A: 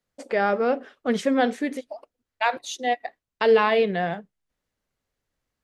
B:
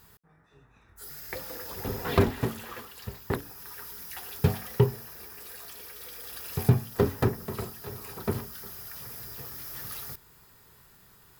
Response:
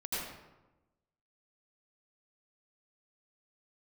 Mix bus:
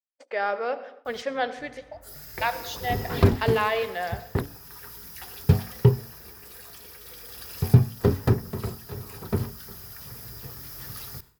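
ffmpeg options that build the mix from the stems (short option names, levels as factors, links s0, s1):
-filter_complex "[0:a]agate=range=0.355:threshold=0.01:ratio=16:detection=peak,acrossover=split=440 5700:gain=0.112 1 0.251[s0][s1][s2];[s0][s1][s2]amix=inputs=3:normalize=0,volume=0.668,asplit=2[s3][s4];[s4]volume=0.141[s5];[1:a]equalizer=f=74:w=0.33:g=7.5,adelay=1050,volume=0.891[s6];[2:a]atrim=start_sample=2205[s7];[s5][s7]afir=irnorm=-1:irlink=0[s8];[s3][s6][s8]amix=inputs=3:normalize=0,agate=range=0.0224:threshold=0.00631:ratio=3:detection=peak,adynamicequalizer=threshold=0.00178:dfrequency=5000:dqfactor=3.1:tfrequency=5000:tqfactor=3.1:attack=5:release=100:ratio=0.375:range=2.5:mode=boostabove:tftype=bell"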